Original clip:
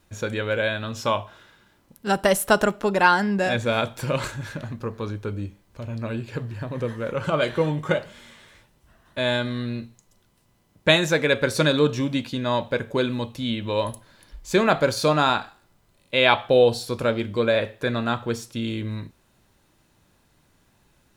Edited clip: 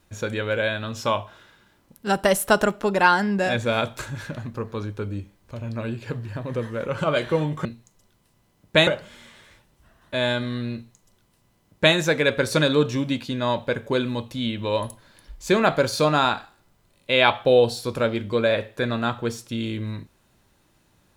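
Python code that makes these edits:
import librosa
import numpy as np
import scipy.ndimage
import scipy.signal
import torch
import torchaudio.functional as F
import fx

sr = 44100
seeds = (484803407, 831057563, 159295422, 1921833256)

y = fx.edit(x, sr, fx.cut(start_s=3.99, length_s=0.26),
    fx.duplicate(start_s=9.77, length_s=1.22, to_s=7.91), tone=tone)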